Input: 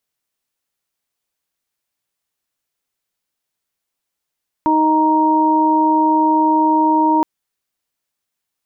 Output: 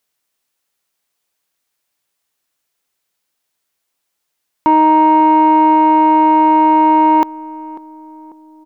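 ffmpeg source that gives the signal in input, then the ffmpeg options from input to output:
-f lavfi -i "aevalsrc='0.178*sin(2*PI*312*t)+0.0562*sin(2*PI*624*t)+0.224*sin(2*PI*936*t)':d=2.57:s=44100"
-filter_complex "[0:a]lowshelf=f=210:g=-7,acontrast=70,asplit=2[s0][s1];[s1]adelay=544,lowpass=f=880:p=1,volume=0.158,asplit=2[s2][s3];[s3]adelay=544,lowpass=f=880:p=1,volume=0.54,asplit=2[s4][s5];[s5]adelay=544,lowpass=f=880:p=1,volume=0.54,asplit=2[s6][s7];[s7]adelay=544,lowpass=f=880:p=1,volume=0.54,asplit=2[s8][s9];[s9]adelay=544,lowpass=f=880:p=1,volume=0.54[s10];[s0][s2][s4][s6][s8][s10]amix=inputs=6:normalize=0"

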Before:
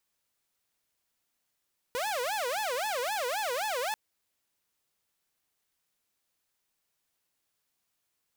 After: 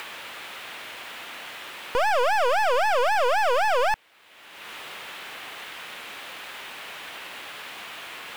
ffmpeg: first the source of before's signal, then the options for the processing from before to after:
-f lavfi -i "aevalsrc='0.0447*(2*mod((676*t-196/(2*PI*3.8)*sin(2*PI*3.8*t)),1)-1)':d=1.99:s=44100"
-filter_complex "[0:a]highshelf=f=4100:t=q:w=1.5:g=-8.5,asplit=2[s0][s1];[s1]acompressor=mode=upward:threshold=0.0141:ratio=2.5,volume=1.12[s2];[s0][s2]amix=inputs=2:normalize=0,asplit=2[s3][s4];[s4]highpass=f=720:p=1,volume=28.2,asoftclip=type=tanh:threshold=0.158[s5];[s3][s5]amix=inputs=2:normalize=0,lowpass=f=2700:p=1,volume=0.501"

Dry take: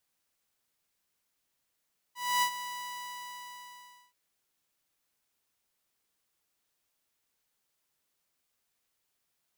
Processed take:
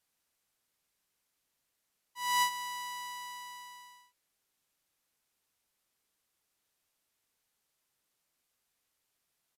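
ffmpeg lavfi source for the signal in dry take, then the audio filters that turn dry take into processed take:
-f lavfi -i "aevalsrc='0.0891*(2*mod(984*t,1)-1)':d=1.98:s=44100,afade=t=in:d=0.27,afade=t=out:st=0.27:d=0.08:silence=0.224,afade=t=out:st=0.49:d=1.49"
-af "aresample=32000,aresample=44100"

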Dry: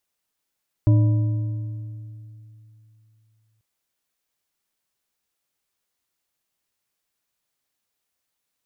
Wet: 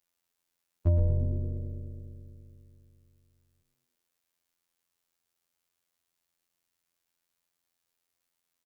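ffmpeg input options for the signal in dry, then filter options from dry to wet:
-f lavfi -i "aevalsrc='0.266*pow(10,-3*t/3.03)*sin(2*PI*110*t)+0.0841*pow(10,-3*t/2.235)*sin(2*PI*303.3*t)+0.0266*pow(10,-3*t/1.827)*sin(2*PI*594.4*t)+0.00841*pow(10,-3*t/1.571)*sin(2*PI*982.6*t)':d=2.74:s=44100"
-filter_complex "[0:a]afftfilt=real='hypot(re,im)*cos(PI*b)':imag='0':win_size=2048:overlap=0.75,asplit=2[s0][s1];[s1]asplit=6[s2][s3][s4][s5][s6][s7];[s2]adelay=113,afreqshift=-110,volume=0.398[s8];[s3]adelay=226,afreqshift=-220,volume=0.195[s9];[s4]adelay=339,afreqshift=-330,volume=0.0955[s10];[s5]adelay=452,afreqshift=-440,volume=0.0468[s11];[s6]adelay=565,afreqshift=-550,volume=0.0229[s12];[s7]adelay=678,afreqshift=-660,volume=0.0112[s13];[s8][s9][s10][s11][s12][s13]amix=inputs=6:normalize=0[s14];[s0][s14]amix=inputs=2:normalize=0"

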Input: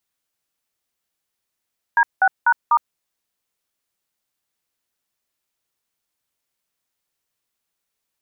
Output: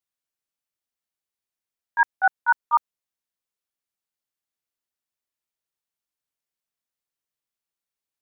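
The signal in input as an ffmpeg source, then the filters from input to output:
-f lavfi -i "aevalsrc='0.2*clip(min(mod(t,0.247),0.061-mod(t,0.247))/0.002,0,1)*(eq(floor(t/0.247),0)*(sin(2*PI*941*mod(t,0.247))+sin(2*PI*1633*mod(t,0.247)))+eq(floor(t/0.247),1)*(sin(2*PI*770*mod(t,0.247))+sin(2*PI*1477*mod(t,0.247)))+eq(floor(t/0.247),2)*(sin(2*PI*941*mod(t,0.247))+sin(2*PI*1477*mod(t,0.247)))+eq(floor(t/0.247),3)*(sin(2*PI*941*mod(t,0.247))+sin(2*PI*1209*mod(t,0.247))))':d=0.988:s=44100"
-af "agate=range=0.282:threshold=0.178:ratio=16:detection=peak"

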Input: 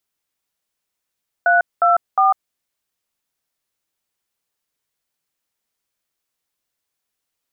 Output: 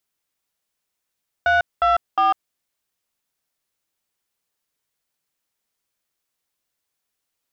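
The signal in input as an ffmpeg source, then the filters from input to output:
-f lavfi -i "aevalsrc='0.211*clip(min(mod(t,0.358),0.149-mod(t,0.358))/0.002,0,1)*(eq(floor(t/0.358),0)*(sin(2*PI*697*mod(t,0.358))+sin(2*PI*1477*mod(t,0.358)))+eq(floor(t/0.358),1)*(sin(2*PI*697*mod(t,0.358))+sin(2*PI*1336*mod(t,0.358)))+eq(floor(t/0.358),2)*(sin(2*PI*770*mod(t,0.358))+sin(2*PI*1209*mod(t,0.358))))':d=1.074:s=44100"
-af "asoftclip=type=tanh:threshold=0.251"

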